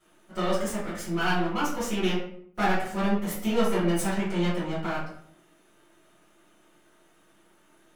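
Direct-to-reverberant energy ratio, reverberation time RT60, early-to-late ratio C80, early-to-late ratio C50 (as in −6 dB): −12.0 dB, 0.65 s, 7.5 dB, 3.0 dB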